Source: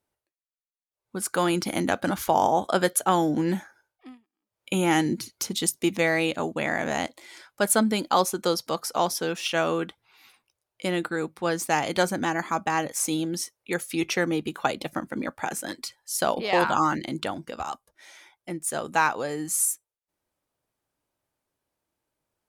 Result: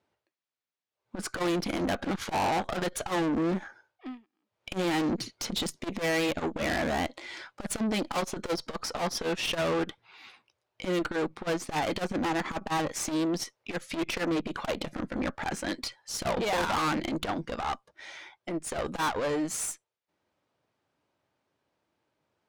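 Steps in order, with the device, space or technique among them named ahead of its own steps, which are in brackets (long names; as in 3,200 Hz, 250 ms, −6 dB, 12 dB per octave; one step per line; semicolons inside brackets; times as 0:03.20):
valve radio (band-pass filter 93–4,300 Hz; tube saturation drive 33 dB, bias 0.55; saturating transformer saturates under 190 Hz)
level +8.5 dB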